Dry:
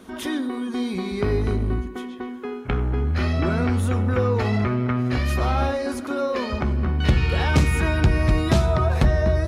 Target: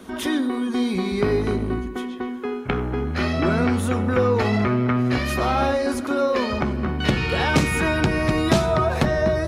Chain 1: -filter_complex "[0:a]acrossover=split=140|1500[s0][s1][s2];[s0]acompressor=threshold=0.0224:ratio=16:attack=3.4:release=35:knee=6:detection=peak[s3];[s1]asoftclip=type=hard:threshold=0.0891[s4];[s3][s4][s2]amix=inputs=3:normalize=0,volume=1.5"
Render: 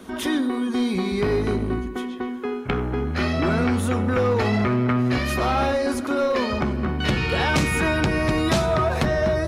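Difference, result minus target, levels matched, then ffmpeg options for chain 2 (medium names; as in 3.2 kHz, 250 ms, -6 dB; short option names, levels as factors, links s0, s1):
hard clipper: distortion +31 dB
-filter_complex "[0:a]acrossover=split=140|1500[s0][s1][s2];[s0]acompressor=threshold=0.0224:ratio=16:attack=3.4:release=35:knee=6:detection=peak[s3];[s1]asoftclip=type=hard:threshold=0.251[s4];[s3][s4][s2]amix=inputs=3:normalize=0,volume=1.5"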